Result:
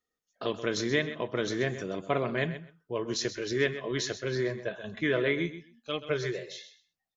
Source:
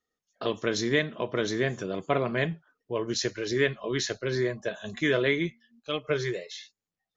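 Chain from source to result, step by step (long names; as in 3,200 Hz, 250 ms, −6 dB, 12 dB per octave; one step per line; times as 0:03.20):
0:04.61–0:05.38: low-pass filter 3,400 Hz 12 dB per octave
on a send: repeating echo 129 ms, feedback 16%, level −12.5 dB
on the sum: level −2.5 dB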